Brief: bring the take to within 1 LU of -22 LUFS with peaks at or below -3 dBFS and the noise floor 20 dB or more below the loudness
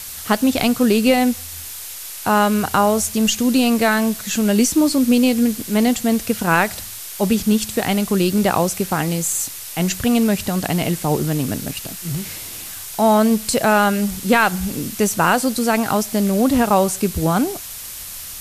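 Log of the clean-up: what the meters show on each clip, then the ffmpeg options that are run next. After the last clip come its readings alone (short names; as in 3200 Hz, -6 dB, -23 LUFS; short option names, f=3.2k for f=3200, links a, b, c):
noise floor -33 dBFS; noise floor target -38 dBFS; loudness -18.0 LUFS; peak -3.0 dBFS; loudness target -22.0 LUFS
-> -af "afftdn=nr=6:nf=-33"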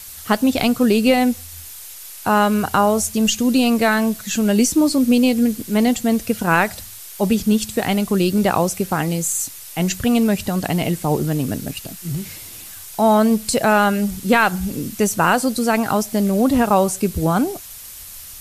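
noise floor -37 dBFS; noise floor target -38 dBFS
-> -af "afftdn=nr=6:nf=-37"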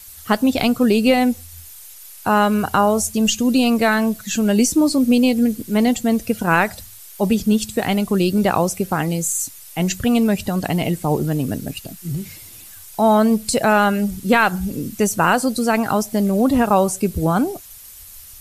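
noise floor -40 dBFS; loudness -18.5 LUFS; peak -3.0 dBFS; loudness target -22.0 LUFS
-> -af "volume=-3.5dB"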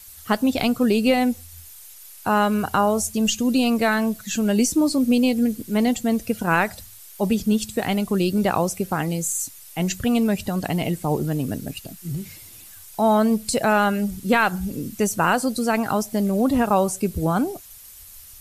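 loudness -22.0 LUFS; peak -6.5 dBFS; noise floor -44 dBFS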